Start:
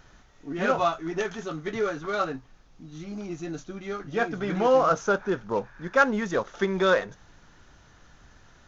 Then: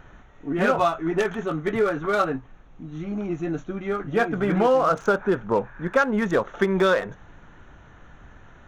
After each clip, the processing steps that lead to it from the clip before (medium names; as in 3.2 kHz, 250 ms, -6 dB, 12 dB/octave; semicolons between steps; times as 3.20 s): local Wiener filter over 9 samples; compression 6:1, threshold -23 dBFS, peak gain reduction 9 dB; trim +7 dB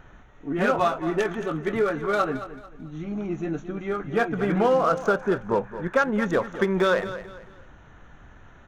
feedback delay 221 ms, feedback 32%, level -13 dB; trim -1.5 dB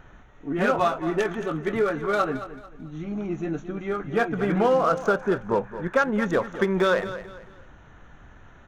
no audible change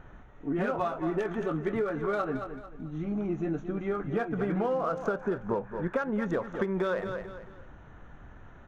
treble shelf 2.3 kHz -10 dB; compression, threshold -26 dBFS, peak gain reduction 9 dB